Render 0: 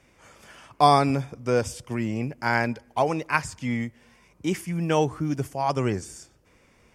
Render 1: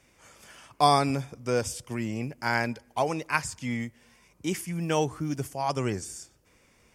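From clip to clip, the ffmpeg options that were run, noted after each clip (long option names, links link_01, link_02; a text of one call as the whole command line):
ffmpeg -i in.wav -af "highshelf=frequency=4000:gain=8,volume=-4dB" out.wav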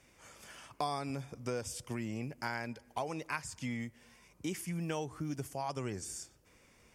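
ffmpeg -i in.wav -af "acompressor=threshold=-33dB:ratio=4,volume=-2dB" out.wav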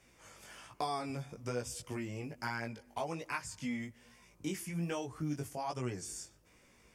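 ffmpeg -i in.wav -af "flanger=delay=16:depth=4.6:speed=1.2,volume=2.5dB" out.wav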